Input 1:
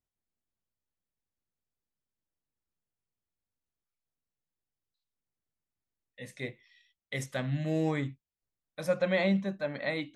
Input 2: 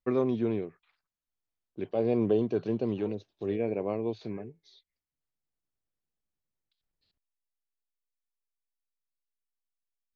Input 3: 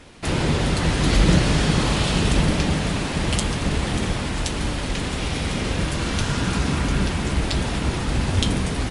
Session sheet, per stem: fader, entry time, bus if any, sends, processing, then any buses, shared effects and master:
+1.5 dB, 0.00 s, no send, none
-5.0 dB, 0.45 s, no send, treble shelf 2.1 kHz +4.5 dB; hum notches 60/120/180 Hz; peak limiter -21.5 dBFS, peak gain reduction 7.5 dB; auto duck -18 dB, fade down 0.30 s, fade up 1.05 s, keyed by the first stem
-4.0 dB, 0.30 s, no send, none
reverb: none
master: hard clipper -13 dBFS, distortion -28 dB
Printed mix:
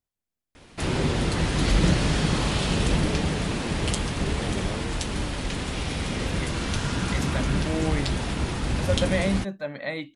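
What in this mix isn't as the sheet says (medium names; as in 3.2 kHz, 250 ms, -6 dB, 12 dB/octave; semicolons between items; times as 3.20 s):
stem 2: entry 0.45 s -> 0.80 s; stem 3: entry 0.30 s -> 0.55 s; master: missing hard clipper -13 dBFS, distortion -28 dB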